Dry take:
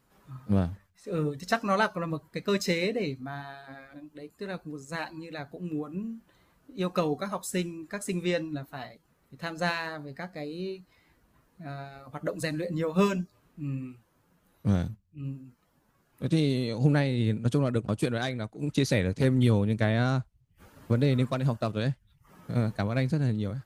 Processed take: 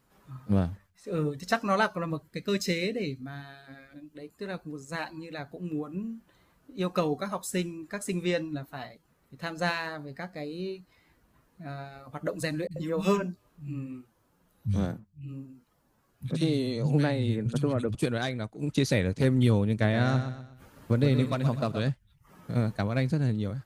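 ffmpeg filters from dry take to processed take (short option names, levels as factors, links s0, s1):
-filter_complex "[0:a]asettb=1/sr,asplit=3[s0][s1][s2];[s0]atrim=end=2.224[s3];[s1]atrim=start=2.22:end=4.15,asetpts=PTS-STARTPTS,afade=t=in:d=0.004:c=qsin,afade=t=out:st=1.926:d=0.004:c=qsin,equalizer=f=900:t=o:w=1.1:g=-10.5[s4];[s2]atrim=start=4.146[s5];[s3][s4]acrossfade=d=0.004:c1=hsin:c2=qsin[s6];[s6][s5]acrossfade=d=0.004:c1=qsin:c2=hsin,asettb=1/sr,asplit=3[s7][s8][s9];[s7]atrim=end=12.674[s10];[s8]atrim=start=12.67:end=17.95,asetpts=PTS-STARTPTS,afade=t=in:d=0.004:c=qsin,afade=t=out:st=5.276:d=0.004:c=qsin,acrossover=split=160|2100[s11][s12][s13];[s13]adelay=40[s14];[s12]adelay=90[s15];[s11][s15][s14]amix=inputs=3:normalize=0,atrim=end_sample=232848[s16];[s9]atrim=start=17.946[s17];[s10][s16]acrossfade=d=0.004:c1=hsin:c2=qsin[s18];[s18][s17]acrossfade=d=0.004:c1=qsin:c2=hsin,asettb=1/sr,asplit=3[s19][s20][s21];[s19]atrim=end=19.724[s22];[s20]atrim=start=19.72:end=21.89,asetpts=PTS-STARTPTS,afade=t=in:d=0.004:c=qsin,afade=t=out:st=2.166:d=0.004:c=qsin,aecho=1:1:123|246|369|492:0.355|0.131|0.0486|0.018,atrim=end_sample=95697[s23];[s21]atrim=start=21.886[s24];[s22][s23]acrossfade=d=0.004:c1=hsin:c2=qsin[s25];[s25][s24]acrossfade=d=0.004:c1=qsin:c2=hsin"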